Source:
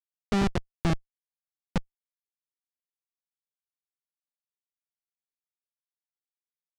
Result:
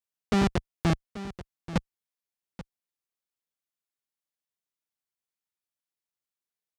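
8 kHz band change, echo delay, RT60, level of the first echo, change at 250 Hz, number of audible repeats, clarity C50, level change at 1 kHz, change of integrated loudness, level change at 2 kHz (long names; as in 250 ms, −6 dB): +1.5 dB, 834 ms, no reverb audible, −14.5 dB, +1.5 dB, 1, no reverb audible, +1.5 dB, +1.0 dB, +1.5 dB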